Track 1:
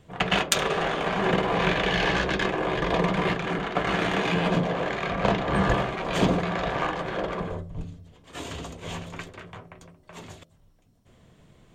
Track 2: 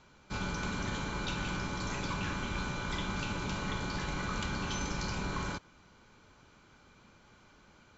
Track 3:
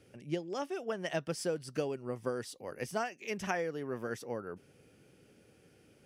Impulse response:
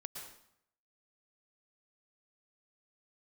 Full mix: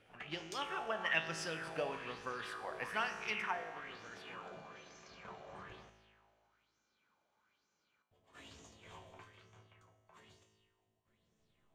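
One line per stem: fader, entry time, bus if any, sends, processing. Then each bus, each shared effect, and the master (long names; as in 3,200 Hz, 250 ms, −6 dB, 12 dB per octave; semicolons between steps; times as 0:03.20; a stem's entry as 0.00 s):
−1.0 dB, 0.00 s, muted 0:05.90–0:08.11, no send, resonators tuned to a chord D2 major, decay 0.27 s; automatic ducking −9 dB, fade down 0.35 s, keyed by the third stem
−10.5 dB, 0.05 s, no send, brickwall limiter −33 dBFS, peak gain reduction 10 dB; high-pass filter 300 Hz 6 dB per octave
0:03.35 −0.5 dB → 0:03.55 −11 dB, 0.00 s, no send, flat-topped bell 1,800 Hz +13 dB 2.4 octaves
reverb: not used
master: tuned comb filter 54 Hz, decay 1.8 s, harmonics all, mix 80%; auto-filter bell 1.1 Hz 620–6,400 Hz +12 dB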